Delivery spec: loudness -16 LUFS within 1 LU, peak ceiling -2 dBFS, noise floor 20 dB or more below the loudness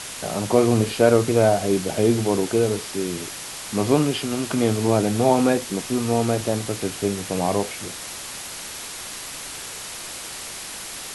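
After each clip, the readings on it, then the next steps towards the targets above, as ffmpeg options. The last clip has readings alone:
noise floor -35 dBFS; noise floor target -43 dBFS; loudness -23.0 LUFS; peak level -3.5 dBFS; loudness target -16.0 LUFS
-> -af "afftdn=nr=8:nf=-35"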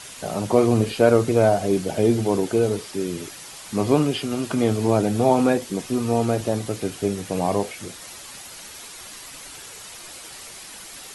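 noise floor -40 dBFS; noise floor target -42 dBFS
-> -af "afftdn=nr=6:nf=-40"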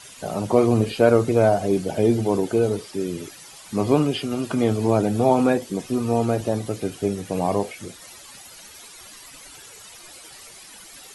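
noise floor -44 dBFS; loudness -22.0 LUFS; peak level -3.5 dBFS; loudness target -16.0 LUFS
-> -af "volume=2,alimiter=limit=0.794:level=0:latency=1"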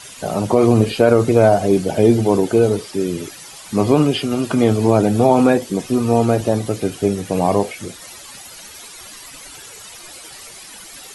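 loudness -16.5 LUFS; peak level -2.0 dBFS; noise floor -38 dBFS

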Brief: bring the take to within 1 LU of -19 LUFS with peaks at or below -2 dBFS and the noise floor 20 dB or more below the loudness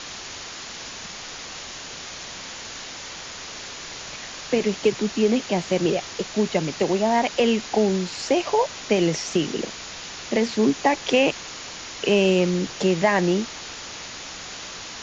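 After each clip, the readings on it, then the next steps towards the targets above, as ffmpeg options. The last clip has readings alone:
noise floor -37 dBFS; noise floor target -45 dBFS; loudness -24.5 LUFS; peak level -6.5 dBFS; loudness target -19.0 LUFS
-> -af "afftdn=nr=8:nf=-37"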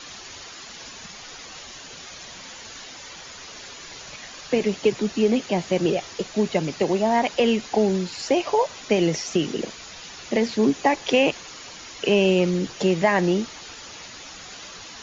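noise floor -41 dBFS; noise floor target -43 dBFS
-> -af "afftdn=nr=6:nf=-41"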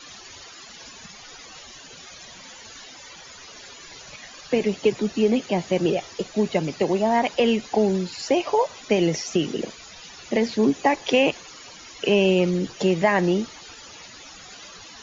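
noise floor -44 dBFS; loudness -22.5 LUFS; peak level -6.5 dBFS; loudness target -19.0 LUFS
-> -af "volume=1.5"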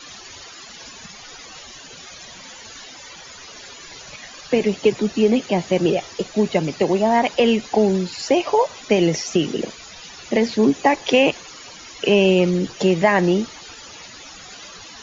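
loudness -19.0 LUFS; peak level -3.0 dBFS; noise floor -40 dBFS

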